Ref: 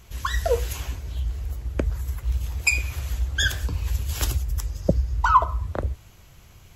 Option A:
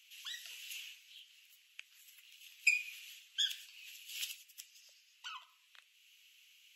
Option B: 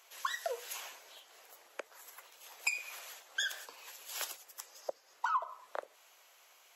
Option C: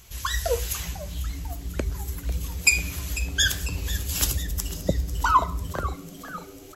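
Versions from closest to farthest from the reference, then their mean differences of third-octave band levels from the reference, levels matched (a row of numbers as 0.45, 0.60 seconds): C, B, A; 6.0, 11.0, 15.5 decibels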